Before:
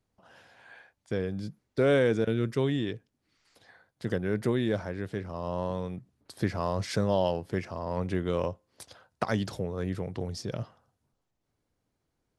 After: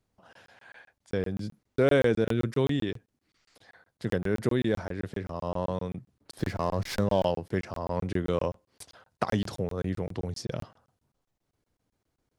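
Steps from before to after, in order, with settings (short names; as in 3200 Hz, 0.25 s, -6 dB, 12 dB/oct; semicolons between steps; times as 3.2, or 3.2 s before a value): crackling interface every 0.13 s, samples 1024, zero, from 0.33; 6.39–7.26 running maximum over 3 samples; gain +1.5 dB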